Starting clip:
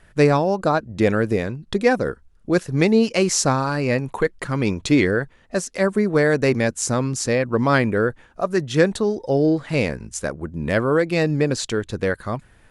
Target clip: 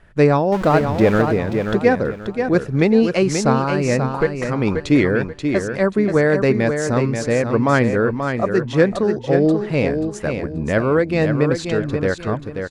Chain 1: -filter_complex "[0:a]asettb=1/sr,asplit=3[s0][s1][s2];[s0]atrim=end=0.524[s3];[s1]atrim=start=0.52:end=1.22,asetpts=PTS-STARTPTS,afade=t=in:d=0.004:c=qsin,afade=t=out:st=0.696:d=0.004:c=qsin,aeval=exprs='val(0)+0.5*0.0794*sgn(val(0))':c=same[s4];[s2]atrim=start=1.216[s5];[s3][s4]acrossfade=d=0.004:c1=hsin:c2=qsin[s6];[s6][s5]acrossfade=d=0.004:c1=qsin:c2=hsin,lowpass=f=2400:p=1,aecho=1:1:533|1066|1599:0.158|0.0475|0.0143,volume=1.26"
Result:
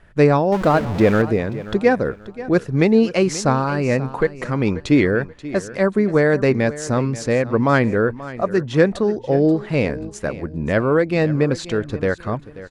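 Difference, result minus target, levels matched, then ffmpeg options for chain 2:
echo-to-direct -9.5 dB
-filter_complex "[0:a]asettb=1/sr,asplit=3[s0][s1][s2];[s0]atrim=end=0.524[s3];[s1]atrim=start=0.52:end=1.22,asetpts=PTS-STARTPTS,afade=t=in:d=0.004:c=qsin,afade=t=out:st=0.696:d=0.004:c=qsin,aeval=exprs='val(0)+0.5*0.0794*sgn(val(0))':c=same[s4];[s2]atrim=start=1.216[s5];[s3][s4]acrossfade=d=0.004:c1=hsin:c2=qsin[s6];[s6][s5]acrossfade=d=0.004:c1=qsin:c2=hsin,lowpass=f=2400:p=1,aecho=1:1:533|1066|1599|2132:0.473|0.142|0.0426|0.0128,volume=1.26"

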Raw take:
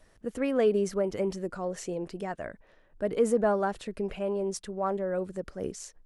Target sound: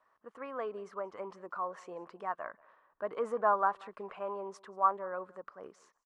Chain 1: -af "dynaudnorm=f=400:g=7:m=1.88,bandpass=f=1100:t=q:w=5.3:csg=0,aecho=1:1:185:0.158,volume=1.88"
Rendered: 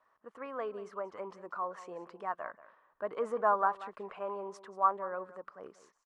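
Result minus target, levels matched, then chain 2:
echo-to-direct +8 dB
-af "dynaudnorm=f=400:g=7:m=1.88,bandpass=f=1100:t=q:w=5.3:csg=0,aecho=1:1:185:0.0631,volume=1.88"

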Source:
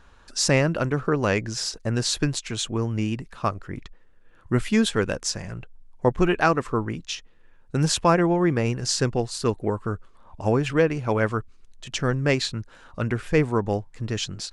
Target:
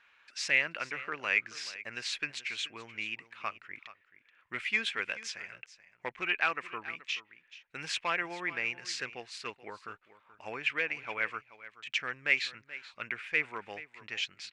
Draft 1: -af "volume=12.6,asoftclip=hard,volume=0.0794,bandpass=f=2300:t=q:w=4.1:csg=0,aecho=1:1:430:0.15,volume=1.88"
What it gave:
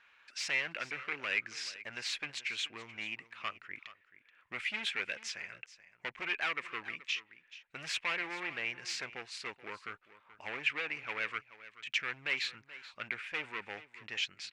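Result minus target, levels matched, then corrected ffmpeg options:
overload inside the chain: distortion +16 dB
-af "volume=3.55,asoftclip=hard,volume=0.282,bandpass=f=2300:t=q:w=4.1:csg=0,aecho=1:1:430:0.15,volume=1.88"

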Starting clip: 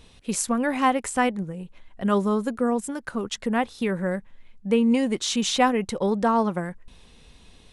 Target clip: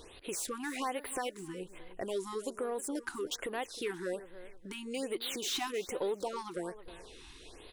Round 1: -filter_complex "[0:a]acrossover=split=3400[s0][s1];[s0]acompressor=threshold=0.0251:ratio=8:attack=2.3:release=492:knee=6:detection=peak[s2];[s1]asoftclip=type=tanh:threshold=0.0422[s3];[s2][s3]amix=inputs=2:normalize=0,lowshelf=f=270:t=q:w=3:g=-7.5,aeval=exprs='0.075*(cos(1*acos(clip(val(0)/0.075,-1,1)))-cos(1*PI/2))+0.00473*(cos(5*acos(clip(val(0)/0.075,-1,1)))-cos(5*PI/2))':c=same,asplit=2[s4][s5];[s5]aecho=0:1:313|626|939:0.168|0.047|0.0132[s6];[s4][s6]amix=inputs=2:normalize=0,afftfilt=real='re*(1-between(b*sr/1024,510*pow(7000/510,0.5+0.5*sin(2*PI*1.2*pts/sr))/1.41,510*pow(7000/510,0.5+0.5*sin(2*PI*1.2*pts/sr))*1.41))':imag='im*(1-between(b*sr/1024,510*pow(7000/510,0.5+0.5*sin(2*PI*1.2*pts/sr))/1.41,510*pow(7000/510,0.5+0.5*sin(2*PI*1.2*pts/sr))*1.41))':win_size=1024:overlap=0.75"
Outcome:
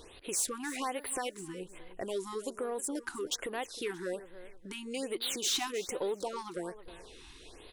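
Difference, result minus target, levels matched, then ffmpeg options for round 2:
saturation: distortion -8 dB
-filter_complex "[0:a]acrossover=split=3400[s0][s1];[s0]acompressor=threshold=0.0251:ratio=8:attack=2.3:release=492:knee=6:detection=peak[s2];[s1]asoftclip=type=tanh:threshold=0.0112[s3];[s2][s3]amix=inputs=2:normalize=0,lowshelf=f=270:t=q:w=3:g=-7.5,aeval=exprs='0.075*(cos(1*acos(clip(val(0)/0.075,-1,1)))-cos(1*PI/2))+0.00473*(cos(5*acos(clip(val(0)/0.075,-1,1)))-cos(5*PI/2))':c=same,asplit=2[s4][s5];[s5]aecho=0:1:313|626|939:0.168|0.047|0.0132[s6];[s4][s6]amix=inputs=2:normalize=0,afftfilt=real='re*(1-between(b*sr/1024,510*pow(7000/510,0.5+0.5*sin(2*PI*1.2*pts/sr))/1.41,510*pow(7000/510,0.5+0.5*sin(2*PI*1.2*pts/sr))*1.41))':imag='im*(1-between(b*sr/1024,510*pow(7000/510,0.5+0.5*sin(2*PI*1.2*pts/sr))/1.41,510*pow(7000/510,0.5+0.5*sin(2*PI*1.2*pts/sr))*1.41))':win_size=1024:overlap=0.75"

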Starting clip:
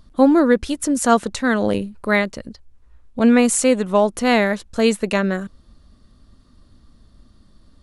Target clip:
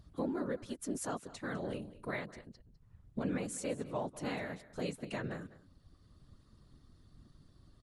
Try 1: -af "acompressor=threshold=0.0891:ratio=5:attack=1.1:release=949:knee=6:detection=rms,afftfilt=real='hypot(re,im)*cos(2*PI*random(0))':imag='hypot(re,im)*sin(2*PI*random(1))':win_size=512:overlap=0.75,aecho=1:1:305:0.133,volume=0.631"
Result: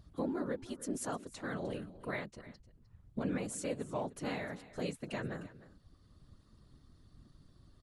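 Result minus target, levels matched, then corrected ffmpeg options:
echo 103 ms late
-af "acompressor=threshold=0.0891:ratio=5:attack=1.1:release=949:knee=6:detection=rms,afftfilt=real='hypot(re,im)*cos(2*PI*random(0))':imag='hypot(re,im)*sin(2*PI*random(1))':win_size=512:overlap=0.75,aecho=1:1:202:0.133,volume=0.631"

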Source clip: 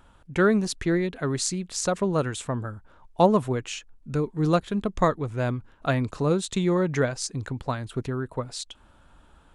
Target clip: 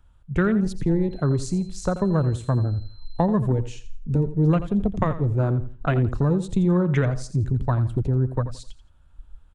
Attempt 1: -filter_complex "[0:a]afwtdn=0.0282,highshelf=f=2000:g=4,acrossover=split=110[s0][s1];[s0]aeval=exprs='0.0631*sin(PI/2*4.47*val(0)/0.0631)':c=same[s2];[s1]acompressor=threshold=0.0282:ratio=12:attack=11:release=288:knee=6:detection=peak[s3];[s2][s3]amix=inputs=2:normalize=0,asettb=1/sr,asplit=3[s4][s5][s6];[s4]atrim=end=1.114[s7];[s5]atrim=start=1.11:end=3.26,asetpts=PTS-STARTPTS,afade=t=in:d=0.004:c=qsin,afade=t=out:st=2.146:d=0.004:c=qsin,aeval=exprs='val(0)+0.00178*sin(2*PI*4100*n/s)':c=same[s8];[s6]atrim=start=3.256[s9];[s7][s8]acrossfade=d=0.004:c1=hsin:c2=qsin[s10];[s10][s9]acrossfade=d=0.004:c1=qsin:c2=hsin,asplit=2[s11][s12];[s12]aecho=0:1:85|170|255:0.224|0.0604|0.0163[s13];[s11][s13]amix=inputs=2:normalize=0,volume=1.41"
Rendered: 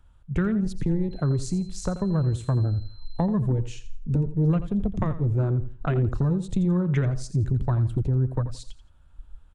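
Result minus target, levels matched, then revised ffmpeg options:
compression: peak gain reduction +8 dB
-filter_complex "[0:a]afwtdn=0.0282,highshelf=f=2000:g=4,acrossover=split=110[s0][s1];[s0]aeval=exprs='0.0631*sin(PI/2*4.47*val(0)/0.0631)':c=same[s2];[s1]acompressor=threshold=0.075:ratio=12:attack=11:release=288:knee=6:detection=peak[s3];[s2][s3]amix=inputs=2:normalize=0,asettb=1/sr,asplit=3[s4][s5][s6];[s4]atrim=end=1.114[s7];[s5]atrim=start=1.11:end=3.26,asetpts=PTS-STARTPTS,afade=t=in:d=0.004:c=qsin,afade=t=out:st=2.146:d=0.004:c=qsin,aeval=exprs='val(0)+0.00178*sin(2*PI*4100*n/s)':c=same[s8];[s6]atrim=start=3.256[s9];[s7][s8]acrossfade=d=0.004:c1=hsin:c2=qsin[s10];[s10][s9]acrossfade=d=0.004:c1=qsin:c2=hsin,asplit=2[s11][s12];[s12]aecho=0:1:85|170|255:0.224|0.0604|0.0163[s13];[s11][s13]amix=inputs=2:normalize=0,volume=1.41"

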